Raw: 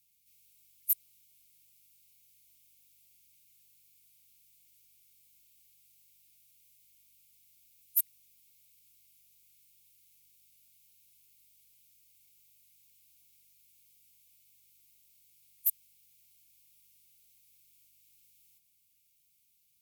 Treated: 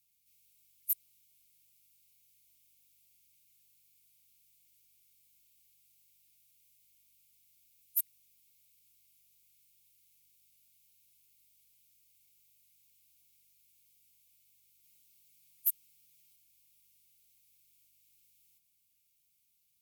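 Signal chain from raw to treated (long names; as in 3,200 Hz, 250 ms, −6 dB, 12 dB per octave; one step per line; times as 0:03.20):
0:14.83–0:16.36: comb filter 6.4 ms, depth 82%
level −3.5 dB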